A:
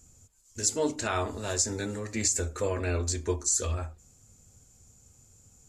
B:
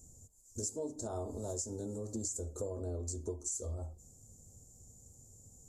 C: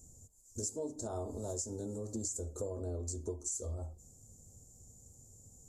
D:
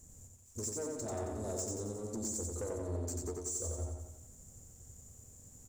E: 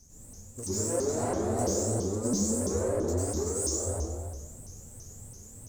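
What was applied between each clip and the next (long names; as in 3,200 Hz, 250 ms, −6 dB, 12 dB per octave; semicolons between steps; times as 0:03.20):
Chebyshev band-stop filter 620–7,300 Hz, order 2; downward compressor 5 to 1, threshold −38 dBFS, peak gain reduction 13.5 dB; level +1 dB
no processing that can be heard
leveller curve on the samples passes 2; repeating echo 90 ms, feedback 55%, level −3 dB; level −6.5 dB
dense smooth reverb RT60 1.3 s, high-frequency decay 0.75×, pre-delay 85 ms, DRR −9 dB; pitch modulation by a square or saw wave saw up 3 Hz, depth 250 cents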